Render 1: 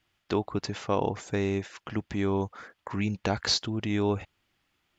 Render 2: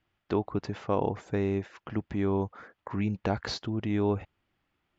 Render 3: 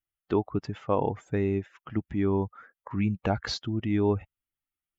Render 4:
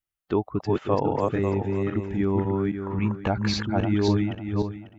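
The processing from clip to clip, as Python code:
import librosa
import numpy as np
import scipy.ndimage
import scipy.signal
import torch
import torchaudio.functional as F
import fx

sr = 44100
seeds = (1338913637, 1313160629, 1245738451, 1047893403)

y1 = fx.lowpass(x, sr, hz=1400.0, slope=6)
y2 = fx.bin_expand(y1, sr, power=1.5)
y2 = y2 * 10.0 ** (4.0 / 20.0)
y3 = fx.reverse_delay_fb(y2, sr, ms=272, feedback_pct=44, wet_db=-1)
y3 = y3 * 10.0 ** (1.5 / 20.0)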